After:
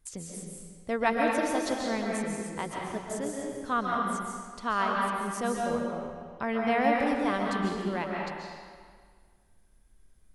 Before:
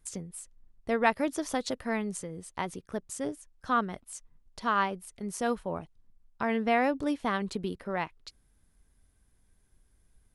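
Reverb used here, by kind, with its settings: algorithmic reverb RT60 1.8 s, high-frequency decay 0.85×, pre-delay 100 ms, DRR -2 dB; trim -2 dB

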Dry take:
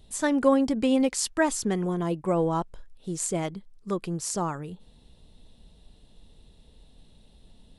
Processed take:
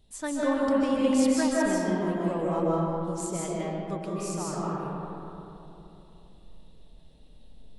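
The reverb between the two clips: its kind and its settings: algorithmic reverb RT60 3.2 s, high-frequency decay 0.4×, pre-delay 110 ms, DRR -6 dB; trim -8 dB

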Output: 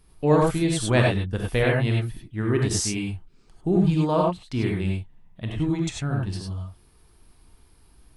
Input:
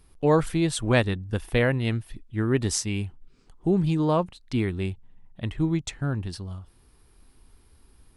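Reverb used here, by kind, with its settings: gated-style reverb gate 120 ms rising, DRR -1 dB; trim -1.5 dB

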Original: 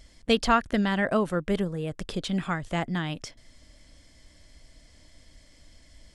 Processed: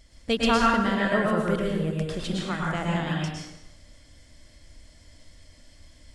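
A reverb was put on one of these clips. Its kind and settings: plate-style reverb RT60 0.92 s, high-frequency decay 0.85×, pre-delay 95 ms, DRR -3.5 dB; trim -3 dB

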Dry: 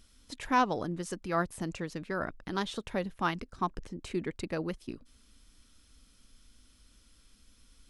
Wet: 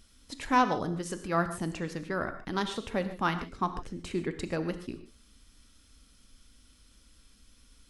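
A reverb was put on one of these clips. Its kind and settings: gated-style reverb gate 170 ms flat, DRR 8.5 dB; trim +1.5 dB

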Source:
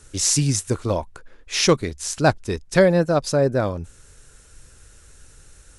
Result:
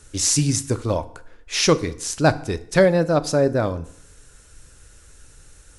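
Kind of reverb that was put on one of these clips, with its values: FDN reverb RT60 0.67 s, low-frequency decay 1×, high-frequency decay 0.8×, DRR 12.5 dB

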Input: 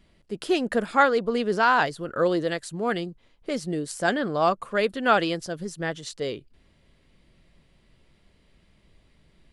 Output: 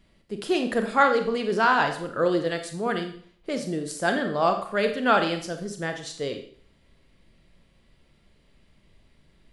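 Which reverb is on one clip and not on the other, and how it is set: Schroeder reverb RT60 0.53 s, combs from 28 ms, DRR 5.5 dB; trim -1 dB

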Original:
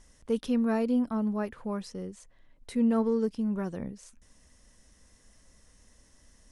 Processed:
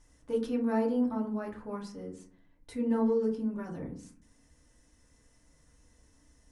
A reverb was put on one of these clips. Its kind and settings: FDN reverb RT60 0.47 s, low-frequency decay 1.55×, high-frequency decay 0.4×, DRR -2.5 dB; trim -8 dB

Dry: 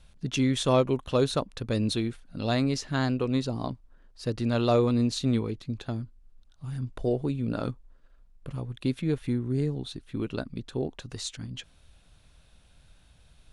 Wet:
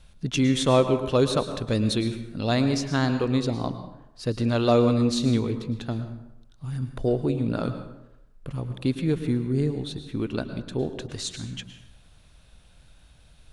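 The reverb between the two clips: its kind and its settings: plate-style reverb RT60 0.85 s, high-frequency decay 0.65×, pre-delay 95 ms, DRR 9 dB; trim +3 dB

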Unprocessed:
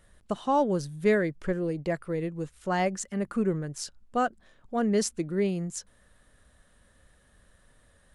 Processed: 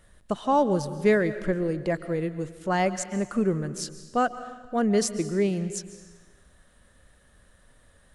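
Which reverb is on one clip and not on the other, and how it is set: algorithmic reverb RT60 1.3 s, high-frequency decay 0.95×, pre-delay 100 ms, DRR 12.5 dB; trim +2.5 dB

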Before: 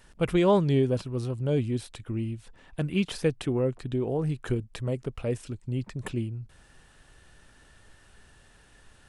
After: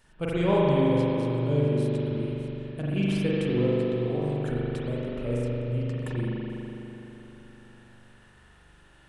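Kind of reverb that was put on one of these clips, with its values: spring tank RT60 3.7 s, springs 41 ms, chirp 75 ms, DRR -7 dB; trim -6 dB

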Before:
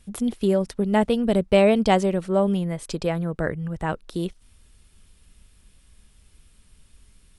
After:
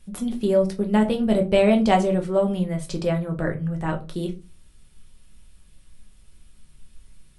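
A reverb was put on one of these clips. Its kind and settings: simulated room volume 120 m³, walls furnished, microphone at 1 m; trim -2.5 dB

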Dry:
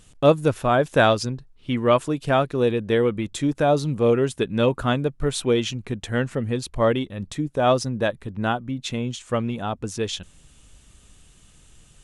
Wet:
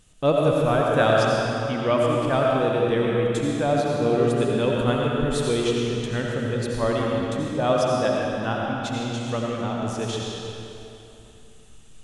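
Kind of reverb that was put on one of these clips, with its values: algorithmic reverb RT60 3 s, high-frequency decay 0.85×, pre-delay 45 ms, DRR -3 dB; trim -5 dB

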